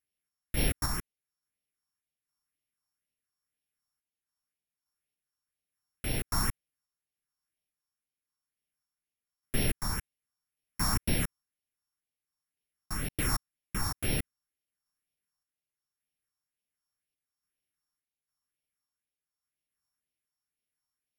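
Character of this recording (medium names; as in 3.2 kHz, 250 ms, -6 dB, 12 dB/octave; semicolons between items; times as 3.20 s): a buzz of ramps at a fixed pitch in blocks of 8 samples; phasing stages 4, 2 Hz, lowest notch 470–1200 Hz; random-step tremolo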